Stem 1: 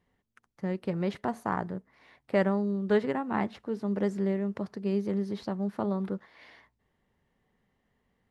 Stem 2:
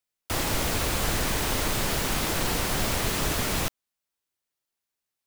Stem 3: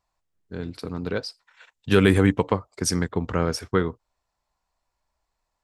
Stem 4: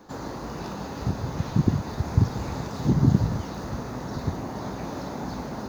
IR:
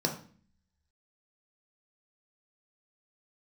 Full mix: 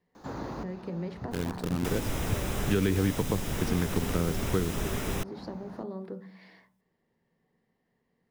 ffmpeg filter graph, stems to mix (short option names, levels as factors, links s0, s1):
-filter_complex "[0:a]acompressor=threshold=0.02:ratio=3,volume=0.501,asplit=3[s0][s1][s2];[s1]volume=0.299[s3];[1:a]bandreject=f=4400:w=5.9,adelay=1550,volume=0.794[s4];[2:a]lowpass=f=4100:w=0.5412,lowpass=f=4100:w=1.3066,acrusher=bits=6:dc=4:mix=0:aa=0.000001,adelay=800,volume=1.06[s5];[3:a]acrossover=split=3700[s6][s7];[s7]acompressor=threshold=0.00112:ratio=4:attack=1:release=60[s8];[s6][s8]amix=inputs=2:normalize=0,adelay=150,volume=0.841[s9];[s2]apad=whole_len=257513[s10];[s9][s10]sidechaincompress=threshold=0.00251:ratio=5:attack=12:release=936[s11];[4:a]atrim=start_sample=2205[s12];[s3][s12]afir=irnorm=-1:irlink=0[s13];[s0][s4][s5][s11][s13]amix=inputs=5:normalize=0,acrossover=split=410|2700[s14][s15][s16];[s14]acompressor=threshold=0.0631:ratio=4[s17];[s15]acompressor=threshold=0.0126:ratio=4[s18];[s16]acompressor=threshold=0.00891:ratio=4[s19];[s17][s18][s19]amix=inputs=3:normalize=0"